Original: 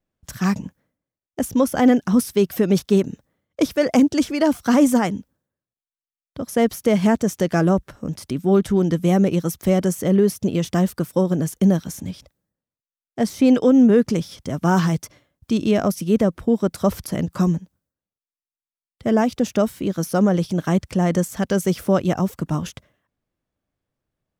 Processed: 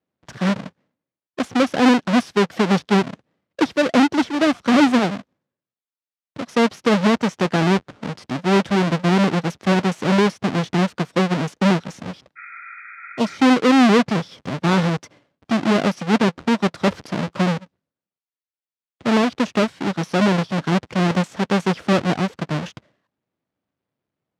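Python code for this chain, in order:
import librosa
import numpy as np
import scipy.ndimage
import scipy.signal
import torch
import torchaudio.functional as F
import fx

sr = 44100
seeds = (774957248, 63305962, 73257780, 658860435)

y = fx.halfwave_hold(x, sr)
y = fx.bandpass_edges(y, sr, low_hz=150.0, high_hz=4500.0)
y = fx.spec_repair(y, sr, seeds[0], start_s=12.39, length_s=0.95, low_hz=1200.0, high_hz=2500.0, source='after')
y = F.gain(torch.from_numpy(y), -3.0).numpy()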